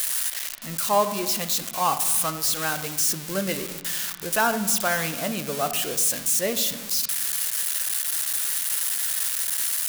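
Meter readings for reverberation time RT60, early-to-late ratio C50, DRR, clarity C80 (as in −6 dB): 1.1 s, 11.0 dB, 8.5 dB, 13.0 dB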